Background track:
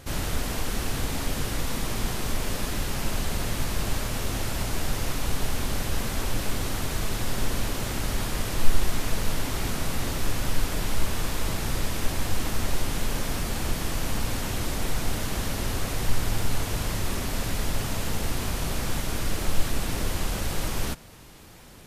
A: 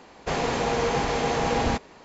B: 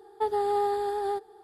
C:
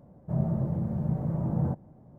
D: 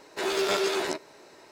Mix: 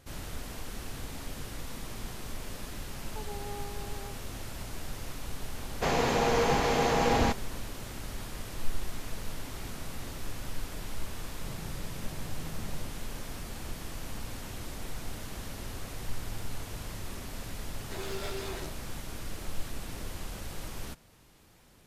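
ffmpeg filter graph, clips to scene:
-filter_complex "[0:a]volume=-11.5dB[a];[3:a]asoftclip=type=tanh:threshold=-31dB[b];[4:a]volume=21dB,asoftclip=hard,volume=-21dB[c];[2:a]atrim=end=1.43,asetpts=PTS-STARTPTS,volume=-17dB,afade=t=in:d=0.004:c=hsin,afade=t=out:st=1.426:d=0.004:c=hsin,adelay=2950[d];[1:a]atrim=end=2.04,asetpts=PTS-STARTPTS,volume=-1.5dB,afade=t=in:d=0.004:c=hsin,afade=t=out:st=2.036:d=0.004:c=hsin,adelay=5550[e];[b]atrim=end=2.18,asetpts=PTS-STARTPTS,volume=-11dB,afade=t=in:d=0.004:c=hsin,afade=t=out:st=2.176:d=0.004:c=hsin,adelay=11130[f];[c]atrim=end=1.51,asetpts=PTS-STARTPTS,volume=-12.5dB,afade=t=in:d=0.004:c=hsin,afade=t=out:st=1.506:d=0.004:c=hsin,adelay=17730[g];[a][d][e][f][g]amix=inputs=5:normalize=0"

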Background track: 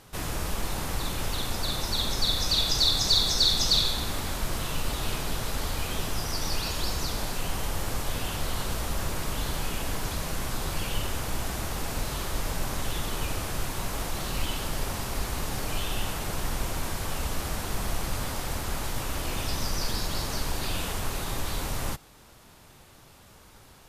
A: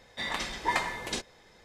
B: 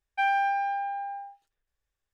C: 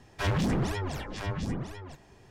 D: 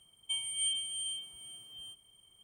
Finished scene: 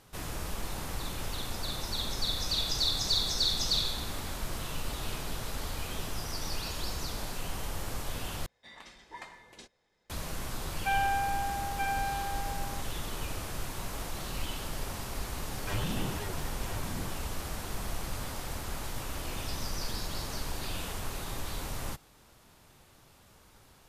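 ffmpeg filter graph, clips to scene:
-filter_complex "[0:a]volume=-6dB[a];[2:a]aecho=1:1:928:0.631[b];[a]asplit=2[c][d];[c]atrim=end=8.464[e];[1:a]atrim=end=1.64,asetpts=PTS-STARTPTS,volume=-17.5dB[f];[d]atrim=start=10.096[g];[b]atrim=end=2.13,asetpts=PTS-STARTPTS,volume=-4dB,afade=t=in:d=0.004:c=hsin,afade=t=out:st=2.126:d=0.004:c=hsin,adelay=10680[h];[3:a]atrim=end=2.3,asetpts=PTS-STARTPTS,volume=-8dB,afade=t=in:d=0.004:c=hsin,afade=t=out:st=2.296:d=0.004:c=hsin,adelay=15470[i];[e][f]acrossfade=d=0.004:c1=hsin:c2=hsin[j];[j][g]acrossfade=d=0.004:c1=hsin:c2=hsin[k];[k][h][i]amix=inputs=3:normalize=0"

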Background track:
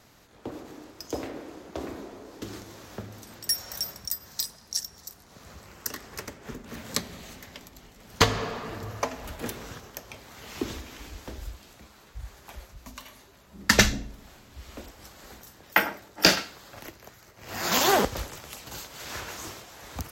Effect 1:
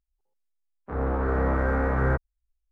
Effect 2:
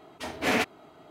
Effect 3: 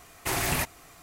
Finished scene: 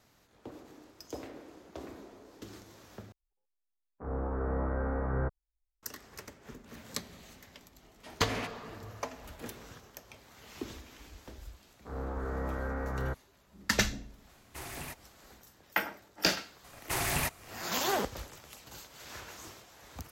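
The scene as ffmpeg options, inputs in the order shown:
-filter_complex "[1:a]asplit=2[a][b];[3:a]asplit=2[c][d];[0:a]volume=-9dB[e];[a]lowpass=1.3k[f];[d]equalizer=f=310:t=o:w=0.77:g=-3[g];[e]asplit=2[h][i];[h]atrim=end=3.124[j];[f]atrim=end=2.71,asetpts=PTS-STARTPTS,volume=-8dB[k];[i]atrim=start=5.826[l];[2:a]atrim=end=1.1,asetpts=PTS-STARTPTS,volume=-13.5dB,afade=t=in:d=0.004:c=hsin,afade=t=out:st=1.096:d=0.004:c=hsin,adelay=7830[m];[b]atrim=end=2.71,asetpts=PTS-STARTPTS,volume=-11dB,afade=t=in:d=0.004:c=hsin,afade=t=out:st=2.706:d=0.004:c=hsin,adelay=10970[n];[c]atrim=end=1.02,asetpts=PTS-STARTPTS,volume=-15.5dB,afade=t=in:d=0.004:c=hsin,afade=t=out:st=1.016:d=0.004:c=hsin,adelay=14290[o];[g]atrim=end=1.02,asetpts=PTS-STARTPTS,volume=-3.5dB,afade=t=in:d=0.004:c=hsin,afade=t=out:st=1.016:d=0.004:c=hsin,adelay=16640[p];[j][k]acrossfade=d=0.004:c1=hsin:c2=hsin[q];[q][l]acrossfade=d=0.004:c1=hsin:c2=hsin[r];[r][m][n][o][p]amix=inputs=5:normalize=0"

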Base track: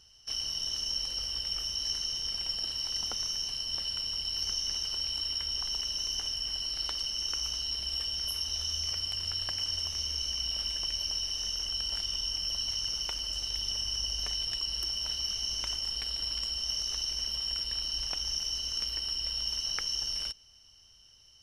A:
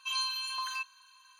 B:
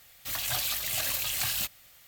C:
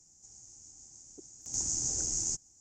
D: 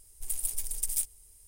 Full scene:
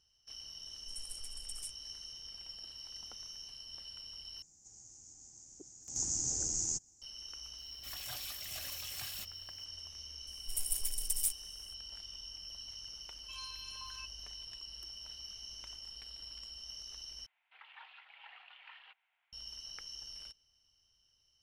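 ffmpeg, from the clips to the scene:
-filter_complex "[4:a]asplit=2[a][b];[2:a]asplit=2[c][d];[0:a]volume=-14.5dB[e];[a]lowpass=f=10k:w=0.5412,lowpass=f=10k:w=1.3066[f];[d]highpass=f=450:t=q:w=0.5412,highpass=f=450:t=q:w=1.307,lowpass=f=2.7k:t=q:w=0.5176,lowpass=f=2.7k:t=q:w=0.7071,lowpass=f=2.7k:t=q:w=1.932,afreqshift=190[g];[e]asplit=3[h][i][j];[h]atrim=end=4.424[k];[3:a]atrim=end=2.6,asetpts=PTS-STARTPTS,volume=-2.5dB[l];[i]atrim=start=7.016:end=17.264[m];[g]atrim=end=2.07,asetpts=PTS-STARTPTS,volume=-16.5dB[n];[j]atrim=start=19.326[o];[f]atrim=end=1.47,asetpts=PTS-STARTPTS,volume=-13dB,afade=t=in:d=0.004:c=hsin,afade=t=out:st=1.466:d=0.004:c=hsin,adelay=660[p];[c]atrim=end=2.07,asetpts=PTS-STARTPTS,volume=-14dB,afade=t=in:d=0.004:c=hsin,afade=t=out:st=2.066:d=0.004:c=hsin,adelay=7580[q];[b]atrim=end=1.47,asetpts=PTS-STARTPTS,volume=-3dB,afade=t=in:d=0.004:c=hsin,afade=t=out:st=1.466:d=0.004:c=hsin,adelay=10270[r];[1:a]atrim=end=1.39,asetpts=PTS-STARTPTS,volume=-15dB,afade=t=in:d=0.004:c=hsin,afade=t=out:st=1.386:d=0.004:c=hsin,adelay=13230[s];[k][l]acrossfade=d=0.004:c1=hsin:c2=hsin[t];[t][m]acrossfade=d=0.004:c1=hsin:c2=hsin[u];[u][n]acrossfade=d=0.004:c1=hsin:c2=hsin[v];[v][o]acrossfade=d=0.004:c1=hsin:c2=hsin[w];[w][p][q][r][s]amix=inputs=5:normalize=0"

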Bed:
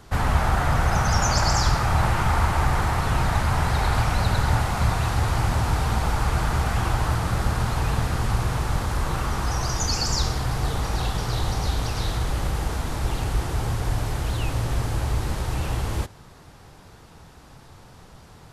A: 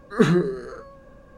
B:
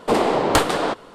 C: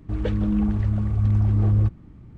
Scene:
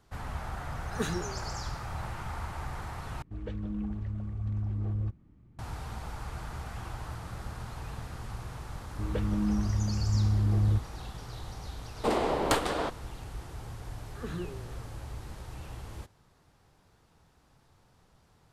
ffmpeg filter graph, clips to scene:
-filter_complex "[1:a]asplit=2[a][b];[3:a]asplit=2[c][d];[0:a]volume=-16.5dB[e];[a]crystalizer=i=4.5:c=0[f];[b]alimiter=limit=-11dB:level=0:latency=1:release=105[g];[e]asplit=2[h][i];[h]atrim=end=3.224[j];[c]atrim=end=2.37,asetpts=PTS-STARTPTS,volume=-13dB[k];[i]atrim=start=5.586[l];[f]atrim=end=1.37,asetpts=PTS-STARTPTS,volume=-16dB,afade=t=in:d=0.004:c=hsin,afade=t=out:st=1.366:d=0.004:c=hsin,adelay=800[m];[d]atrim=end=2.37,asetpts=PTS-STARTPTS,volume=-6.5dB,afade=t=in:d=0.004:c=hsin,afade=t=out:st=2.366:d=0.004:c=hsin,adelay=392490S[n];[2:a]atrim=end=1.14,asetpts=PTS-STARTPTS,volume=-9.5dB,afade=t=in:d=0.004:c=hsin,afade=t=out:st=1.136:d=0.004:c=hsin,adelay=11960[o];[g]atrim=end=1.37,asetpts=PTS-STARTPTS,volume=-17.5dB,afade=t=in:d=0.004:c=hsin,afade=t=out:st=1.366:d=0.004:c=hsin,adelay=14040[p];[j][k]acrossfade=d=0.004:c1=hsin:c2=hsin[q];[q][l]acrossfade=d=0.004:c1=hsin:c2=hsin[r];[r][m][n][o][p]amix=inputs=5:normalize=0"

